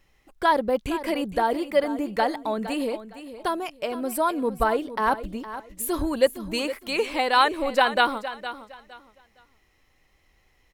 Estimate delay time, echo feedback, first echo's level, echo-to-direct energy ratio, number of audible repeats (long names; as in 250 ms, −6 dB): 462 ms, 24%, −13.0 dB, −12.5 dB, 2